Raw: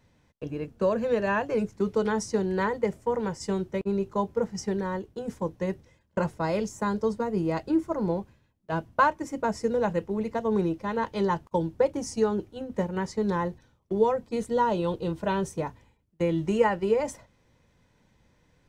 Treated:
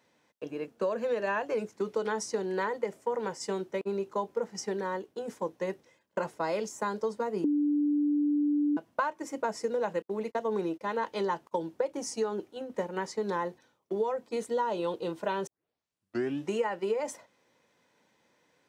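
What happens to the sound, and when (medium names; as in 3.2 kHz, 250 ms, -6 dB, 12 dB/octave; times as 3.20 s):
7.44–8.77 s: bleep 293 Hz -11 dBFS
10.02–10.81 s: gate -38 dBFS, range -41 dB
15.47 s: tape start 1.02 s
whole clip: high-pass 330 Hz 12 dB/octave; compression 6:1, threshold -26 dBFS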